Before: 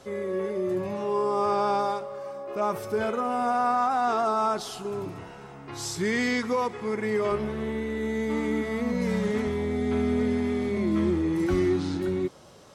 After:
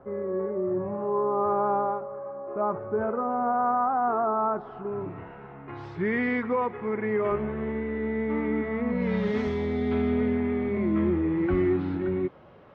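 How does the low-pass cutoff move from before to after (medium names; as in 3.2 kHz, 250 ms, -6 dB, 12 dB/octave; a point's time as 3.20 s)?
low-pass 24 dB/octave
4.54 s 1.4 kHz
5.20 s 2.3 kHz
8.86 s 2.3 kHz
9.47 s 5.7 kHz
10.43 s 2.5 kHz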